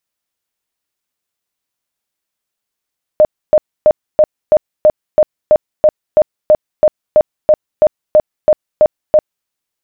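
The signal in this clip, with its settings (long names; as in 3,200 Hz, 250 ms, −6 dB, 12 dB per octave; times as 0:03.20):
tone bursts 612 Hz, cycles 30, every 0.33 s, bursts 19, −3.5 dBFS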